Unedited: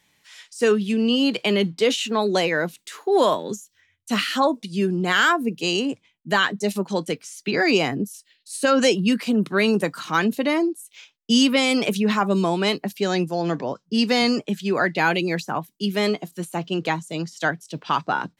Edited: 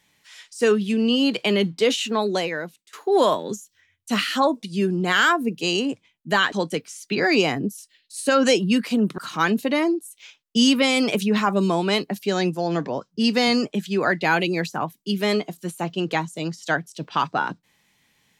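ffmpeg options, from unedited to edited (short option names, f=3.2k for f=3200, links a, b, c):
-filter_complex "[0:a]asplit=4[a][b][c][d];[a]atrim=end=2.93,asetpts=PTS-STARTPTS,afade=t=out:st=2.11:d=0.82:silence=0.0944061[e];[b]atrim=start=2.93:end=6.522,asetpts=PTS-STARTPTS,afade=t=in:d=0.004:c=hsin:silence=0.0944061[f];[c]atrim=start=6.878:end=9.542[g];[d]atrim=start=9.918[h];[e][f]concat=n=2:v=0:a=1[i];[i][g]acrossfade=d=0.004:c1=hsin:c2=hsin[j];[j][h]acrossfade=d=0.004:c1=hsin:c2=hsin"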